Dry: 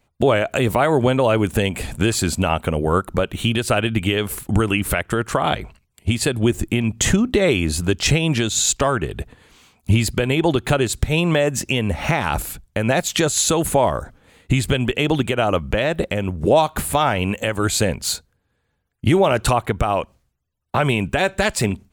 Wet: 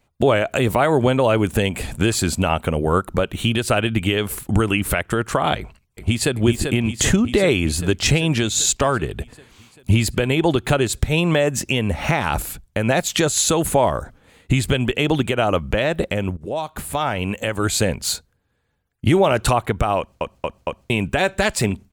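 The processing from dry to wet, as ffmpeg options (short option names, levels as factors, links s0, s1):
-filter_complex "[0:a]asplit=2[s0][s1];[s1]afade=t=in:st=5.58:d=0.01,afade=t=out:st=6.36:d=0.01,aecho=0:1:390|780|1170|1560|1950|2340|2730|3120|3510|3900|4290|4680:0.530884|0.371619|0.260133|0.182093|0.127465|0.0892257|0.062458|0.0437206|0.0306044|0.0214231|0.0149962|0.0104973[s2];[s0][s2]amix=inputs=2:normalize=0,asplit=6[s3][s4][s5][s6][s7][s8];[s3]atrim=end=16.37,asetpts=PTS-STARTPTS,afade=t=out:st=16.366:d=0.004:c=hsin:silence=0.149624[s9];[s4]atrim=start=16.37:end=20.212,asetpts=PTS-STARTPTS,afade=t=in:d=1.77:c=qsin:silence=0.149624[s10];[s5]atrim=start=19.978:end=20.212[s11];[s6]atrim=start=19.978:end=20.212[s12];[s7]atrim=start=19.978:end=20.212[s13];[s8]atrim=start=20.898[s14];[s9][s10]concat=n=2:v=0:a=1[s15];[s15][s11]acrossfade=d=0.004:c1=hsin:c2=hsin[s16];[s16][s12]acrossfade=d=0.004:c1=hsin:c2=hsin[s17];[s17][s13]acrossfade=d=0.004:c1=hsin:c2=hsin[s18];[s18][s14]acrossfade=d=0.004:c1=hsin:c2=hsin"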